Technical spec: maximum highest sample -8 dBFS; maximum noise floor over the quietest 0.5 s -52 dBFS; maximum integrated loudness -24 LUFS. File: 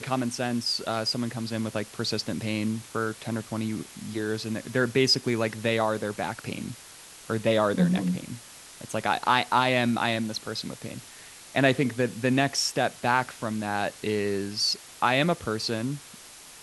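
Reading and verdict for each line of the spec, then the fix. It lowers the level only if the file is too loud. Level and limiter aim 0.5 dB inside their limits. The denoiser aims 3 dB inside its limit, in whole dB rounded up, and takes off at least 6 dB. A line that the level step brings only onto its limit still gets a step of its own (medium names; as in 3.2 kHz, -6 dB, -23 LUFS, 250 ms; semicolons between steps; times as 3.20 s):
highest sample -7.0 dBFS: fail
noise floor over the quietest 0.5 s -47 dBFS: fail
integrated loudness -27.0 LUFS: pass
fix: noise reduction 8 dB, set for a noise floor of -47 dBFS; peak limiter -8.5 dBFS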